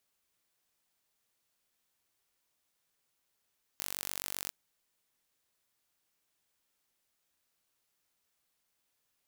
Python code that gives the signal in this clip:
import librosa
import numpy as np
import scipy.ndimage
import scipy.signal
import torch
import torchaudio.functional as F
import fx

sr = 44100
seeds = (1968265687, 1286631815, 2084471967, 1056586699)

y = 10.0 ** (-10.0 / 20.0) * (np.mod(np.arange(round(0.7 * sr)), round(sr / 47.7)) == 0)